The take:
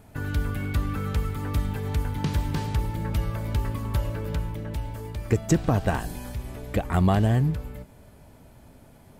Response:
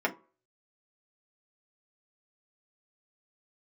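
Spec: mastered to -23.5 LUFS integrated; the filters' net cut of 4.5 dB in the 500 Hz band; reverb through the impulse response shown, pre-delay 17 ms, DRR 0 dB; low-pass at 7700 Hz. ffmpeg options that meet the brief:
-filter_complex "[0:a]lowpass=7.7k,equalizer=f=500:t=o:g=-6,asplit=2[a][b];[1:a]atrim=start_sample=2205,adelay=17[c];[b][c]afir=irnorm=-1:irlink=0,volume=-10dB[d];[a][d]amix=inputs=2:normalize=0,volume=3.5dB"

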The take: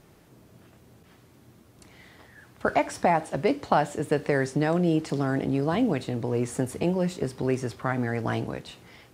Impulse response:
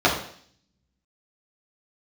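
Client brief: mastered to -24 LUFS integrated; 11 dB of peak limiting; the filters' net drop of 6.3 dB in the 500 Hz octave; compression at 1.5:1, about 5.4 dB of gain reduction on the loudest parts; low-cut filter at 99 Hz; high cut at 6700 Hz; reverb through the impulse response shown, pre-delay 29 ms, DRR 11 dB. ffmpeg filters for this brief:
-filter_complex "[0:a]highpass=99,lowpass=6.7k,equalizer=f=500:t=o:g=-8.5,acompressor=threshold=-37dB:ratio=1.5,alimiter=level_in=2dB:limit=-24dB:level=0:latency=1,volume=-2dB,asplit=2[a][b];[1:a]atrim=start_sample=2205,adelay=29[c];[b][c]afir=irnorm=-1:irlink=0,volume=-31dB[d];[a][d]amix=inputs=2:normalize=0,volume=12.5dB"

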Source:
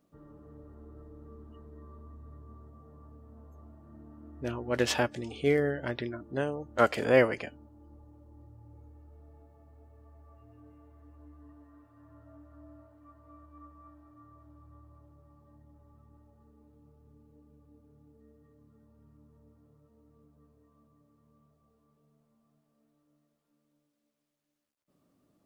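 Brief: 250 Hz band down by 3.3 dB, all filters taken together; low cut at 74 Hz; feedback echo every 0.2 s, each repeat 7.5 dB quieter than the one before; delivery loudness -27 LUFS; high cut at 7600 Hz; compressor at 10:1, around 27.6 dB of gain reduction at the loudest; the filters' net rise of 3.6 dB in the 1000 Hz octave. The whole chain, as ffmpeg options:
-af "highpass=74,lowpass=7.6k,equalizer=f=250:t=o:g=-4.5,equalizer=f=1k:t=o:g=5.5,acompressor=threshold=-45dB:ratio=10,aecho=1:1:200|400|600|800|1000:0.422|0.177|0.0744|0.0312|0.0131,volume=26.5dB"

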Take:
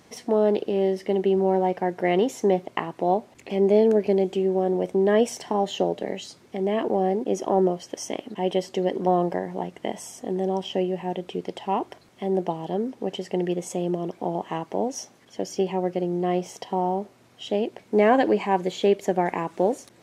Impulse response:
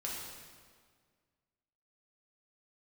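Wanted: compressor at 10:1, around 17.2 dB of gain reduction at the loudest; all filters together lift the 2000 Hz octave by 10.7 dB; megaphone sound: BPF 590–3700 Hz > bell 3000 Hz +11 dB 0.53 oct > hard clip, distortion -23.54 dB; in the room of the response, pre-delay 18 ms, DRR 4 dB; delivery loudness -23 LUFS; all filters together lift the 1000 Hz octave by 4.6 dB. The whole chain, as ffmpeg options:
-filter_complex "[0:a]equalizer=f=1k:t=o:g=6.5,equalizer=f=2k:t=o:g=8.5,acompressor=threshold=-27dB:ratio=10,asplit=2[a][b];[1:a]atrim=start_sample=2205,adelay=18[c];[b][c]afir=irnorm=-1:irlink=0,volume=-5.5dB[d];[a][d]amix=inputs=2:normalize=0,highpass=590,lowpass=3.7k,equalizer=f=3k:t=o:w=0.53:g=11,asoftclip=type=hard:threshold=-20.5dB,volume=10.5dB"

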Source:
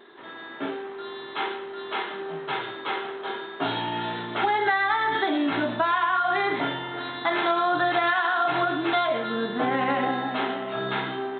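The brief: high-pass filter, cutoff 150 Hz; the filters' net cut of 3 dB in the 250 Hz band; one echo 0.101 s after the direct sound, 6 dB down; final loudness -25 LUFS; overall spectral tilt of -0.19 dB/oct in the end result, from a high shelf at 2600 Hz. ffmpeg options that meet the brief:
-af "highpass=150,equalizer=f=250:t=o:g=-3.5,highshelf=f=2.6k:g=5,aecho=1:1:101:0.501,volume=-1dB"

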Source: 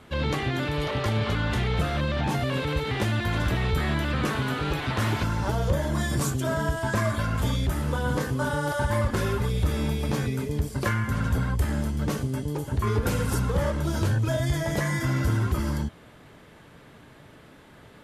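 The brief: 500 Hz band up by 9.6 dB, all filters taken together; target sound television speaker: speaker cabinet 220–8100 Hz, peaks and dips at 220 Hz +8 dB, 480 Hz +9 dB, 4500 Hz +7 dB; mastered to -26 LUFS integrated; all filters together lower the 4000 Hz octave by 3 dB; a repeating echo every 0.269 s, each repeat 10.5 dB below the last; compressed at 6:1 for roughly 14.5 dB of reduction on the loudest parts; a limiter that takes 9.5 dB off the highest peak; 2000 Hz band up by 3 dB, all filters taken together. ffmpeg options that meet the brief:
-af "equalizer=f=500:t=o:g=5.5,equalizer=f=2k:t=o:g=5,equalizer=f=4k:t=o:g=-8.5,acompressor=threshold=-35dB:ratio=6,alimiter=level_in=9dB:limit=-24dB:level=0:latency=1,volume=-9dB,highpass=f=220:w=0.5412,highpass=f=220:w=1.3066,equalizer=f=220:t=q:w=4:g=8,equalizer=f=480:t=q:w=4:g=9,equalizer=f=4.5k:t=q:w=4:g=7,lowpass=f=8.1k:w=0.5412,lowpass=f=8.1k:w=1.3066,aecho=1:1:269|538|807:0.299|0.0896|0.0269,volume=14.5dB"

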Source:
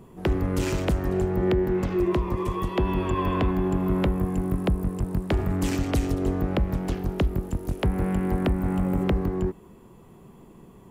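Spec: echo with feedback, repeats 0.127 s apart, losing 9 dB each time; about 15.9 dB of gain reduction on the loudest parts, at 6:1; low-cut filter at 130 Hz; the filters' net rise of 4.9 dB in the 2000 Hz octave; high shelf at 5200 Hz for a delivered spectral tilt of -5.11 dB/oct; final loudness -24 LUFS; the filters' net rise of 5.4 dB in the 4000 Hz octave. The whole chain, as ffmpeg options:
-af "highpass=130,equalizer=f=2k:t=o:g=5,equalizer=f=4k:t=o:g=7,highshelf=f=5.2k:g=-4.5,acompressor=threshold=-38dB:ratio=6,aecho=1:1:127|254|381|508:0.355|0.124|0.0435|0.0152,volume=16.5dB"

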